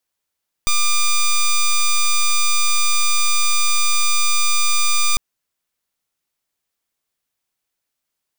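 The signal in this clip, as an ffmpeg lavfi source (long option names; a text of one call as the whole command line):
ffmpeg -f lavfi -i "aevalsrc='0.188*(2*lt(mod(1200*t,1),0.08)-1)':duration=4.5:sample_rate=44100" out.wav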